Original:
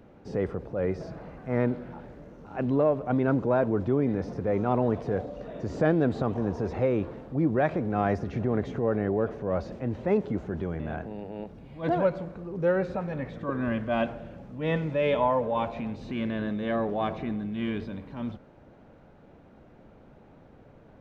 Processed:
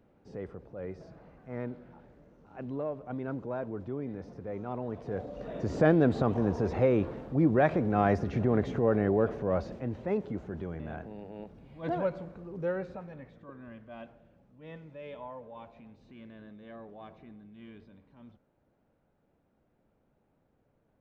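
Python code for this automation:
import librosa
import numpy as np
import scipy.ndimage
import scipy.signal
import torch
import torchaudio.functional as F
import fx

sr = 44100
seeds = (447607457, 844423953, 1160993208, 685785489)

y = fx.gain(x, sr, db=fx.line((4.87, -11.5), (5.52, 0.5), (9.41, 0.5), (10.07, -6.0), (12.57, -6.0), (13.63, -19.0)))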